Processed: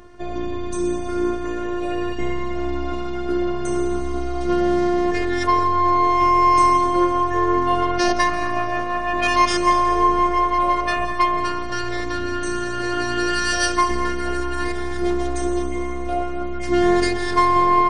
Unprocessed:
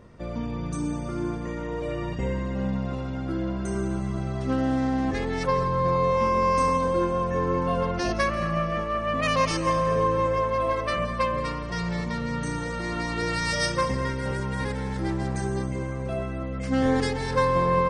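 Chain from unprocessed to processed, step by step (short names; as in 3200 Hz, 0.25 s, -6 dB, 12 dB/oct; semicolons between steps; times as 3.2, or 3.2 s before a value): robotiser 353 Hz; gain +9 dB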